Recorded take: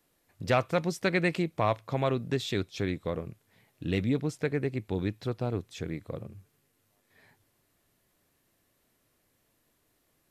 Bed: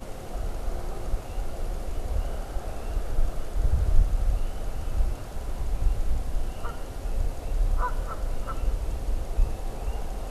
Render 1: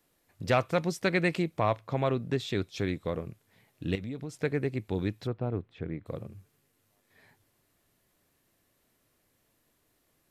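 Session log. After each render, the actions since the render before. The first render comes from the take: 1.59–2.62 high shelf 4000 Hz -6 dB; 3.95–4.37 compressor 4:1, threshold -35 dBFS; 5.27–6.06 air absorption 490 m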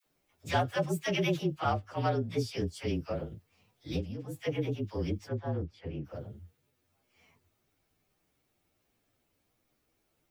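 inharmonic rescaling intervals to 112%; dispersion lows, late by 58 ms, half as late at 630 Hz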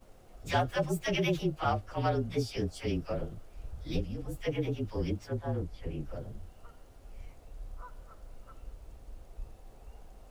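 add bed -19.5 dB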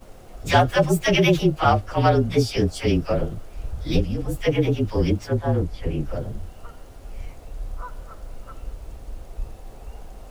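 gain +12 dB

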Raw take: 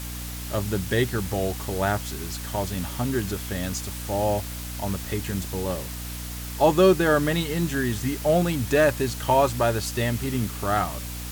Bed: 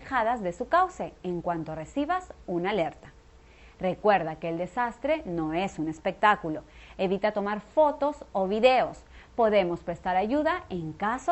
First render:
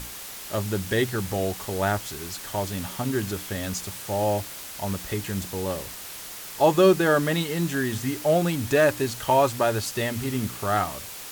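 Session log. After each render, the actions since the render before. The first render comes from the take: notches 60/120/180/240/300 Hz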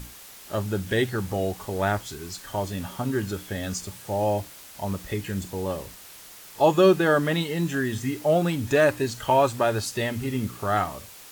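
noise print and reduce 7 dB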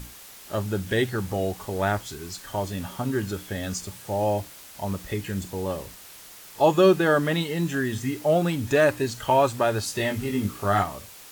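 9.86–10.83 doubler 20 ms -4 dB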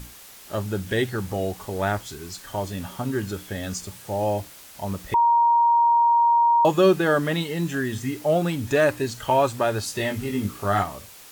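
5.14–6.65 bleep 939 Hz -14.5 dBFS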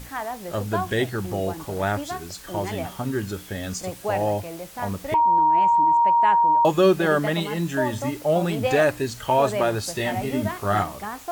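add bed -5 dB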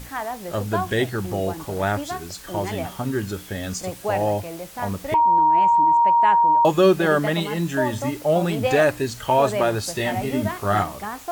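gain +1.5 dB

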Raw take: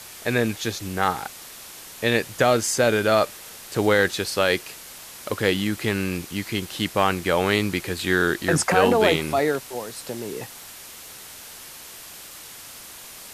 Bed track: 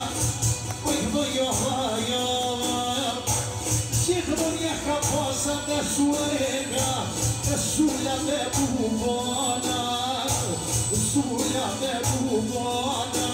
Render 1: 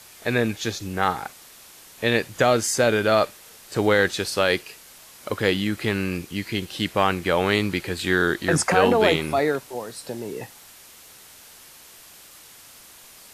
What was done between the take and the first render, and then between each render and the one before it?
noise print and reduce 6 dB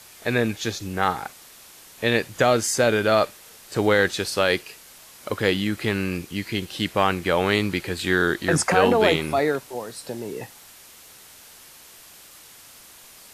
nothing audible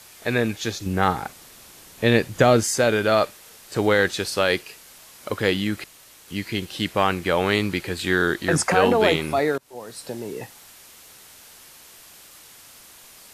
0.86–2.64 low shelf 410 Hz +7.5 dB; 5.84–6.28 room tone; 9.58–9.99 fade in linear, from -23.5 dB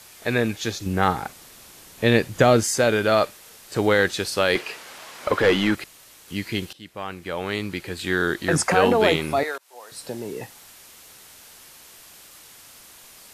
4.55–5.75 overdrive pedal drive 21 dB, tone 1400 Hz, clips at -6.5 dBFS; 6.73–8.61 fade in, from -20.5 dB; 9.43–9.92 HPF 770 Hz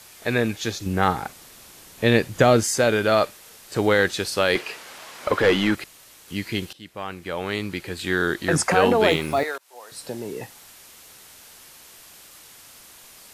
9.09–9.85 block floating point 7-bit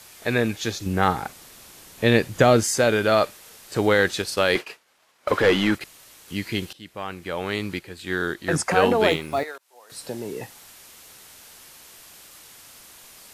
4.22–5.81 expander -29 dBFS; 7.79–9.9 upward expander, over -30 dBFS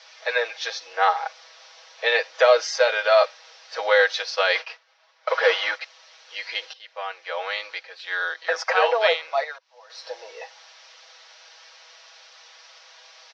Chebyshev band-pass 510–5800 Hz, order 5; comb 6.2 ms, depth 87%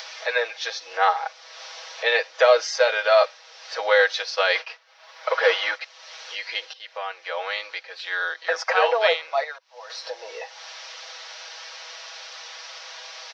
upward compressor, threshold -29 dBFS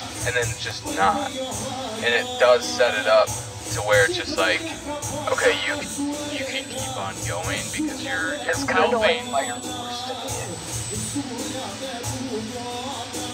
add bed track -4.5 dB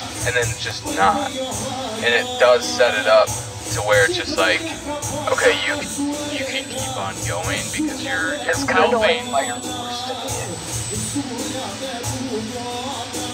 gain +3.5 dB; limiter -3 dBFS, peak gain reduction 3 dB

